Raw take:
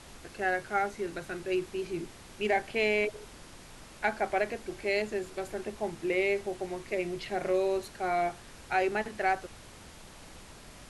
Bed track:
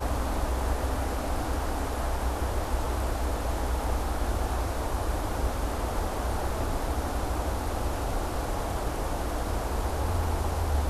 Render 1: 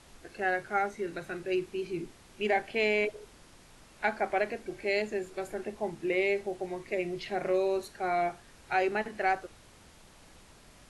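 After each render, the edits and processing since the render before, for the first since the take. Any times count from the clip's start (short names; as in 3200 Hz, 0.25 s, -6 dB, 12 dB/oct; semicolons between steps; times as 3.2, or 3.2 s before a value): noise print and reduce 6 dB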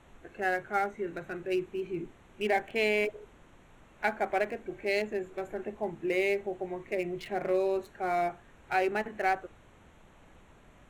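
Wiener smoothing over 9 samples; high shelf 9800 Hz +9 dB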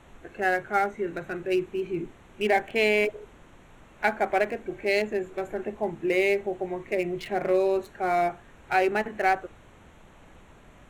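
gain +5 dB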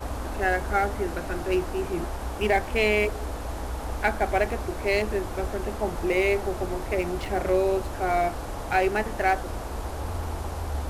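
add bed track -3.5 dB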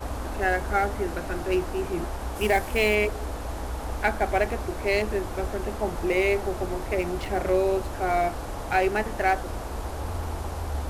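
2.35–2.94 high shelf 7200 Hz -> 12000 Hz +11.5 dB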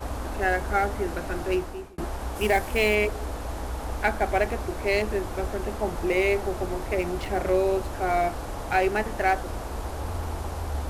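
1.5–1.98 fade out linear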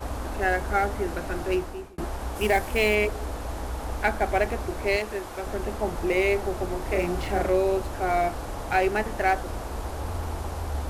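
4.96–5.47 low shelf 340 Hz -10.5 dB; 6.82–7.47 doubler 34 ms -4 dB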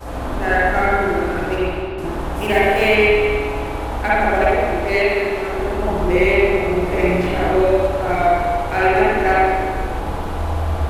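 spring tank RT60 1.7 s, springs 50/56 ms, chirp 20 ms, DRR -9 dB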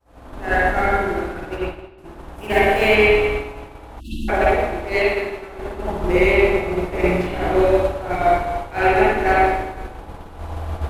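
expander -13 dBFS; 4–4.29 spectral delete 350–2600 Hz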